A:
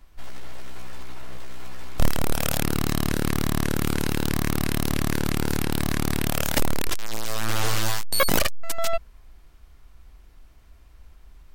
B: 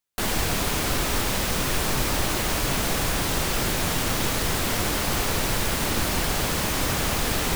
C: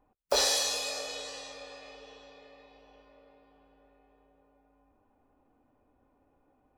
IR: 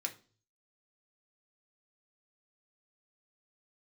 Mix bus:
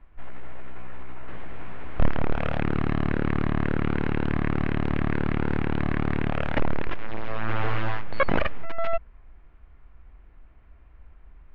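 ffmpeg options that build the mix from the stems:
-filter_complex "[0:a]volume=-0.5dB[link_01];[1:a]alimiter=limit=-18.5dB:level=0:latency=1:release=193,adelay=1100,volume=-13.5dB[link_02];[link_01][link_02]amix=inputs=2:normalize=0,lowpass=frequency=2400:width=0.5412,lowpass=frequency=2400:width=1.3066"

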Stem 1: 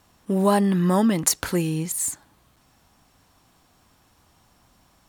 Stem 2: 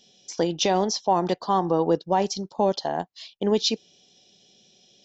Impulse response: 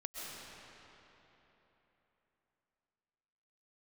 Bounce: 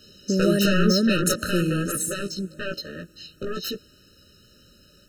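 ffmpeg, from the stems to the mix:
-filter_complex "[0:a]acompressor=threshold=-31dB:ratio=1.5,volume=3dB,asplit=2[link_01][link_02];[link_02]volume=-14dB[link_03];[1:a]aeval=exprs='0.316*sin(PI/2*3.98*val(0)/0.316)':channel_layout=same,flanger=delay=15:depth=3.6:speed=0.49,volume=-4dB,afade=type=out:start_time=1.33:duration=0.38:silence=0.473151[link_04];[2:a]atrim=start_sample=2205[link_05];[link_03][link_05]afir=irnorm=-1:irlink=0[link_06];[link_01][link_04][link_06]amix=inputs=3:normalize=0,afftfilt=real='re*eq(mod(floor(b*sr/1024/620),2),0)':imag='im*eq(mod(floor(b*sr/1024/620),2),0)':win_size=1024:overlap=0.75"

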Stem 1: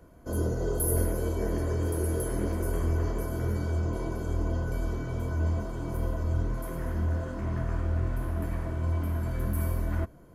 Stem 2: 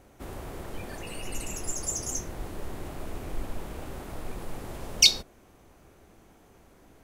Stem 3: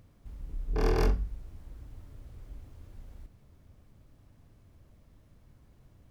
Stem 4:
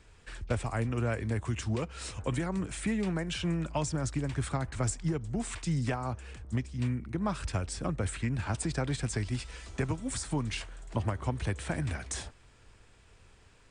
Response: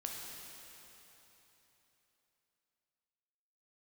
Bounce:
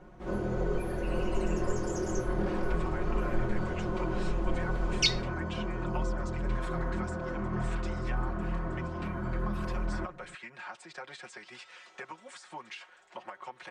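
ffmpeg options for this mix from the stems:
-filter_complex "[0:a]equalizer=frequency=1200:width_type=o:width=0.88:gain=6.5,alimiter=limit=-21.5dB:level=0:latency=1:release=71,volume=-3dB[link_01];[1:a]volume=-4dB[link_02];[2:a]adelay=1600,volume=-13dB[link_03];[3:a]highpass=790,acompressor=threshold=-39dB:ratio=6,adelay=2200,volume=-1dB[link_04];[link_01][link_02][link_03][link_04]amix=inputs=4:normalize=0,lowpass=8000,aemphasis=mode=reproduction:type=75fm,aecho=1:1:5.5:0.9"

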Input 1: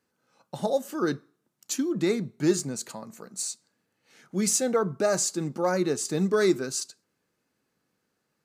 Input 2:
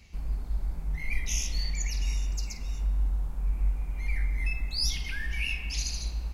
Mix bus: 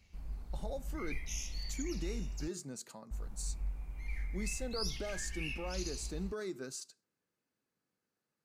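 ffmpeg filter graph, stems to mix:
ffmpeg -i stem1.wav -i stem2.wav -filter_complex "[0:a]alimiter=limit=-21dB:level=0:latency=1:release=114,volume=-11.5dB[link_01];[1:a]flanger=delay=9.4:depth=8.3:regen=71:speed=0.61:shape=triangular,volume=-5.5dB,asplit=3[link_02][link_03][link_04];[link_02]atrim=end=2.48,asetpts=PTS-STARTPTS,afade=type=out:start_time=2.476:duration=0.004:curve=hsin[link_05];[link_03]atrim=start=2.48:end=3.11,asetpts=PTS-STARTPTS,volume=0[link_06];[link_04]atrim=start=3.11,asetpts=PTS-STARTPTS,afade=type=in:duration=0.004:curve=hsin[link_07];[link_05][link_06][link_07]concat=n=3:v=0:a=1[link_08];[link_01][link_08]amix=inputs=2:normalize=0" out.wav

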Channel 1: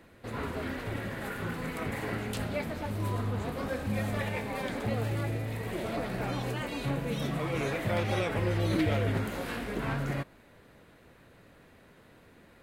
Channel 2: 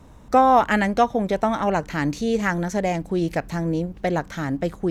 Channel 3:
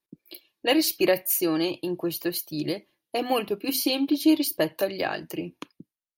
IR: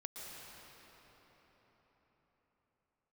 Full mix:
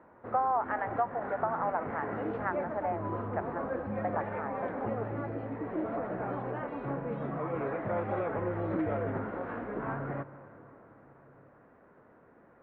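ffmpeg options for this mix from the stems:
-filter_complex "[0:a]aemphasis=mode=production:type=bsi,volume=0dB,asplit=2[link_01][link_02];[link_02]volume=-10.5dB[link_03];[1:a]highpass=frequency=650:width=0.5412,highpass=frequency=650:width=1.3066,volume=-5dB,asplit=2[link_04][link_05];[link_05]volume=-15dB[link_06];[2:a]adelay=1500,volume=-16.5dB[link_07];[3:a]atrim=start_sample=2205[link_08];[link_03][link_06]amix=inputs=2:normalize=0[link_09];[link_09][link_08]afir=irnorm=-1:irlink=0[link_10];[link_01][link_04][link_07][link_10]amix=inputs=4:normalize=0,lowpass=frequency=1400:width=0.5412,lowpass=frequency=1400:width=1.3066,acompressor=threshold=-26dB:ratio=4"

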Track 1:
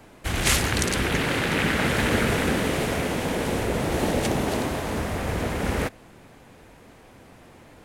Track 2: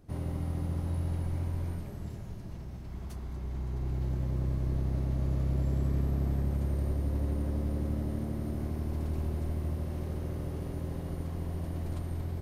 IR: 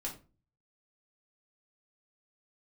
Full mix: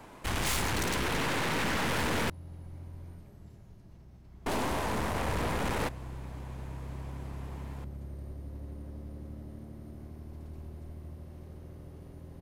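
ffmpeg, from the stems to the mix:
-filter_complex "[0:a]equalizer=frequency=980:width_type=o:width=0.48:gain=8,aeval=exprs='(tanh(28.2*val(0)+0.6)-tanh(0.6))/28.2':channel_layout=same,volume=0.5dB,asplit=3[link_01][link_02][link_03];[link_01]atrim=end=2.3,asetpts=PTS-STARTPTS,afade=type=out:start_time=2.296:duration=0.004:curve=hsin[link_04];[link_02]atrim=start=2.3:end=4.46,asetpts=PTS-STARTPTS,volume=0[link_05];[link_03]atrim=start=4.46,asetpts=PTS-STARTPTS,afade=type=in:duration=0.004:curve=hsin[link_06];[link_04][link_05][link_06]concat=n=3:v=0:a=1[link_07];[1:a]dynaudnorm=framelen=280:gausssize=7:maxgain=7dB,adelay=1400,volume=-18.5dB[link_08];[link_07][link_08]amix=inputs=2:normalize=0"

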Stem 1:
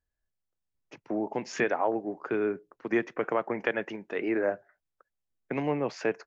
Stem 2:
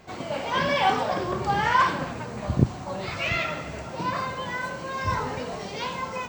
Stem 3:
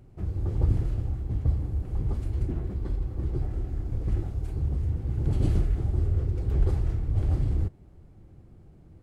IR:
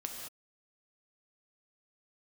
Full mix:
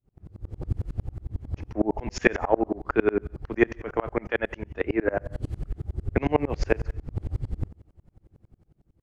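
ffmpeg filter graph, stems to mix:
-filter_complex "[0:a]dynaudnorm=framelen=180:gausssize=11:maxgain=7.5dB,adelay=650,volume=1.5dB,asplit=2[link_01][link_02];[link_02]volume=-13.5dB[link_03];[2:a]volume=-7.5dB,asplit=2[link_04][link_05];[link_05]volume=-8.5dB[link_06];[3:a]atrim=start_sample=2205[link_07];[link_03][link_06]amix=inputs=2:normalize=0[link_08];[link_08][link_07]afir=irnorm=-1:irlink=0[link_09];[link_01][link_04][link_09]amix=inputs=3:normalize=0,dynaudnorm=framelen=160:gausssize=7:maxgain=8.5dB,aeval=exprs='val(0)*pow(10,-33*if(lt(mod(-11*n/s,1),2*abs(-11)/1000),1-mod(-11*n/s,1)/(2*abs(-11)/1000),(mod(-11*n/s,1)-2*abs(-11)/1000)/(1-2*abs(-11)/1000))/20)':channel_layout=same"

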